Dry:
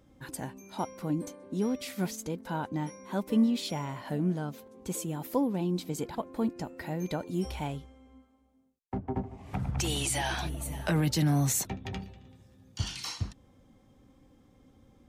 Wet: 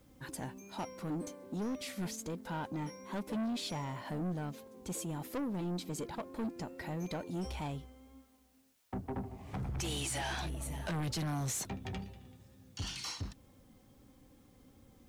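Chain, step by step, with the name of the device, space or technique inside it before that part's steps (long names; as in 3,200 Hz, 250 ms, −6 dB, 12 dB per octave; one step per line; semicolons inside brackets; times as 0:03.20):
compact cassette (soft clipping −31.5 dBFS, distortion −7 dB; low-pass filter 12,000 Hz 12 dB per octave; tape wow and flutter 29 cents; white noise bed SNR 34 dB)
level −1.5 dB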